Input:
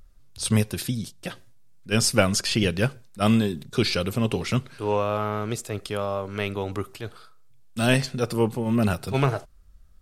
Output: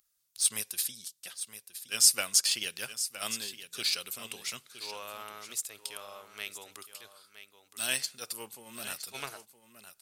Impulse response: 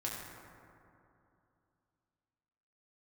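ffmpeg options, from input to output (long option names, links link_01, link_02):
-filter_complex "[0:a]aderivative,asplit=2[link_01][link_02];[link_02]aeval=exprs='sgn(val(0))*max(abs(val(0))-0.015,0)':channel_layout=same,volume=-5dB[link_03];[link_01][link_03]amix=inputs=2:normalize=0,aecho=1:1:966:0.251"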